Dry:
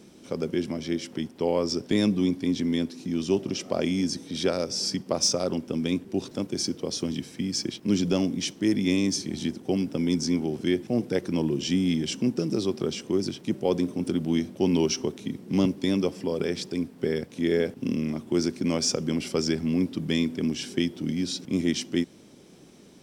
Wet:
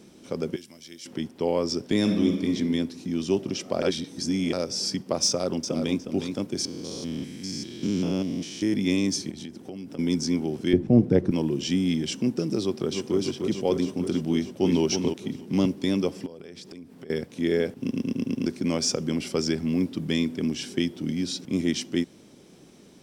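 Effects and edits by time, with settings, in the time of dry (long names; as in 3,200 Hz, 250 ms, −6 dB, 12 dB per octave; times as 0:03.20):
0:00.56–0:01.06: first-order pre-emphasis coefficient 0.9
0:01.99–0:02.55: thrown reverb, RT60 1.2 s, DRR 3 dB
0:03.82–0:04.53: reverse
0:05.27–0:05.98: delay throw 360 ms, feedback 15%, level −6.5 dB
0:06.65–0:08.74: spectrum averaged block by block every 200 ms
0:09.30–0:09.99: downward compressor 5 to 1, threshold −35 dBFS
0:10.73–0:11.31: spectral tilt −4 dB per octave
0:12.61–0:13.17: delay throw 300 ms, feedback 75%, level −5 dB
0:14.32–0:14.81: delay throw 320 ms, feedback 15%, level −5.5 dB
0:16.26–0:17.10: downward compressor 8 to 1, threshold −39 dBFS
0:17.80: stutter in place 0.11 s, 6 plays
0:19.68–0:20.09: floating-point word with a short mantissa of 6 bits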